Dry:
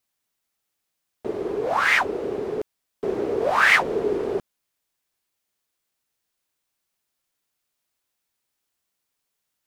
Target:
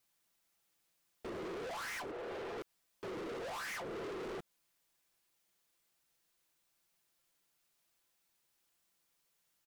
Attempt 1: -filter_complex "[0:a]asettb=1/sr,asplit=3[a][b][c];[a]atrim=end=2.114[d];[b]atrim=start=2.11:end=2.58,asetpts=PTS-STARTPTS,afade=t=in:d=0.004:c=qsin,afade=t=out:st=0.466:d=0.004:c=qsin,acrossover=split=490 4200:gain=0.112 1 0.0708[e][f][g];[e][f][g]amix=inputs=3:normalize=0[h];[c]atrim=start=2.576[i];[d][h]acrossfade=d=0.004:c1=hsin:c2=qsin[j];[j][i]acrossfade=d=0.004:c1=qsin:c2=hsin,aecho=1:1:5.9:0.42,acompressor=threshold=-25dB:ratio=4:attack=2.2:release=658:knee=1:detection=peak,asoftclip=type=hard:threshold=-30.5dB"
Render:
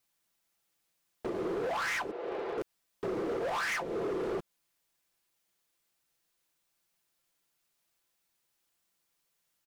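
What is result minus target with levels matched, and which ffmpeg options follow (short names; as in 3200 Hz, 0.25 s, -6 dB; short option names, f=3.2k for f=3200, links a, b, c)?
hard clip: distortion -5 dB
-filter_complex "[0:a]asettb=1/sr,asplit=3[a][b][c];[a]atrim=end=2.114[d];[b]atrim=start=2.11:end=2.58,asetpts=PTS-STARTPTS,afade=t=in:d=0.004:c=qsin,afade=t=out:st=0.466:d=0.004:c=qsin,acrossover=split=490 4200:gain=0.112 1 0.0708[e][f][g];[e][f][g]amix=inputs=3:normalize=0[h];[c]atrim=start=2.576[i];[d][h]acrossfade=d=0.004:c1=hsin:c2=qsin[j];[j][i]acrossfade=d=0.004:c1=qsin:c2=hsin,aecho=1:1:5.9:0.42,acompressor=threshold=-25dB:ratio=4:attack=2.2:release=658:knee=1:detection=peak,asoftclip=type=hard:threshold=-41.5dB"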